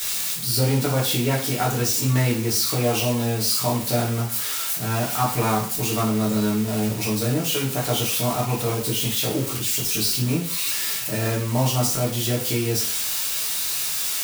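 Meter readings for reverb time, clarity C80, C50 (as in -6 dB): 0.45 s, 10.5 dB, 6.5 dB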